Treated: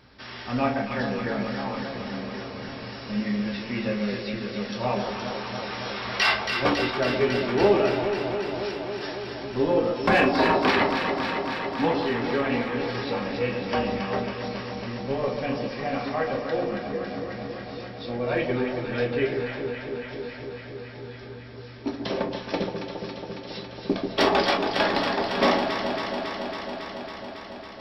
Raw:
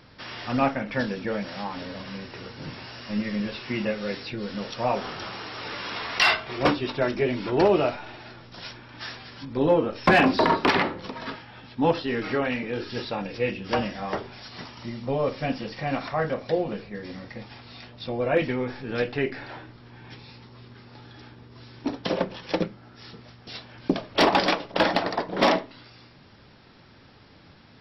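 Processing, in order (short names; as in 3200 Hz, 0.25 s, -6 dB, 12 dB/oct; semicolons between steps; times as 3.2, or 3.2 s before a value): on a send: echo with dull and thin repeats by turns 0.138 s, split 930 Hz, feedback 89%, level -5.5 dB; on the sum: non-linear reverb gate 90 ms falling, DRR 2.5 dB; gain -3.5 dB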